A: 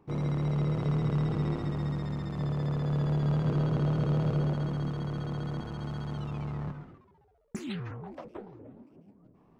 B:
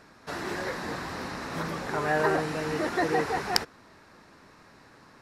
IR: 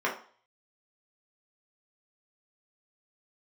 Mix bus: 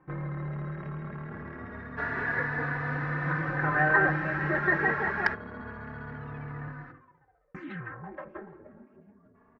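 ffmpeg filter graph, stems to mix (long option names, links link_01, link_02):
-filter_complex "[0:a]acompressor=threshold=-36dB:ratio=2.5,aeval=exprs='0.0335*(abs(mod(val(0)/0.0335+3,4)-2)-1)':channel_layout=same,volume=1dB,asplit=2[link_01][link_02];[link_02]volume=-18dB[link_03];[1:a]adelay=1700,volume=-0.5dB[link_04];[2:a]atrim=start_sample=2205[link_05];[link_03][link_05]afir=irnorm=-1:irlink=0[link_06];[link_01][link_04][link_06]amix=inputs=3:normalize=0,lowpass=frequency=1700:width_type=q:width=4.4,asplit=2[link_07][link_08];[link_08]adelay=3.4,afreqshift=0.26[link_09];[link_07][link_09]amix=inputs=2:normalize=1"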